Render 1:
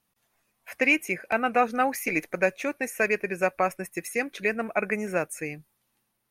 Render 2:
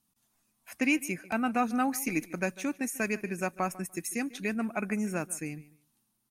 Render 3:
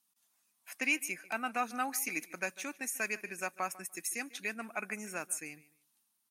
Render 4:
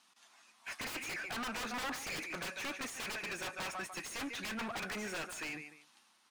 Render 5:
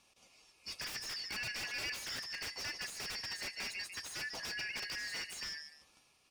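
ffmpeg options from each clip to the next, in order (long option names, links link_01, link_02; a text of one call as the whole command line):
ffmpeg -i in.wav -filter_complex "[0:a]equalizer=frequency=250:width_type=o:width=1:gain=7,equalizer=frequency=500:width_type=o:width=1:gain=-11,equalizer=frequency=2000:width_type=o:width=1:gain=-8,equalizer=frequency=8000:width_type=o:width=1:gain=5,asplit=2[link_01][link_02];[link_02]adelay=147,lowpass=frequency=4700:poles=1,volume=-19dB,asplit=2[link_03][link_04];[link_04]adelay=147,lowpass=frequency=4700:poles=1,volume=0.22[link_05];[link_01][link_03][link_05]amix=inputs=3:normalize=0,volume=-1.5dB" out.wav
ffmpeg -i in.wav -af "highpass=frequency=1200:poles=1" out.wav
ffmpeg -i in.wav -filter_complex "[0:a]lowpass=6700,aeval=exprs='(mod(53.1*val(0)+1,2)-1)/53.1':channel_layout=same,asplit=2[link_01][link_02];[link_02]highpass=frequency=720:poles=1,volume=26dB,asoftclip=type=tanh:threshold=-34.5dB[link_03];[link_01][link_03]amix=inputs=2:normalize=0,lowpass=frequency=2500:poles=1,volume=-6dB,volume=2dB" out.wav
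ffmpeg -i in.wav -af "afftfilt=real='real(if(lt(b,272),68*(eq(floor(b/68),0)*2+eq(floor(b/68),1)*0+eq(floor(b/68),2)*3+eq(floor(b/68),3)*1)+mod(b,68),b),0)':imag='imag(if(lt(b,272),68*(eq(floor(b/68),0)*2+eq(floor(b/68),1)*0+eq(floor(b/68),2)*3+eq(floor(b/68),3)*1)+mod(b,68),b),0)':win_size=2048:overlap=0.75,volume=-1dB" out.wav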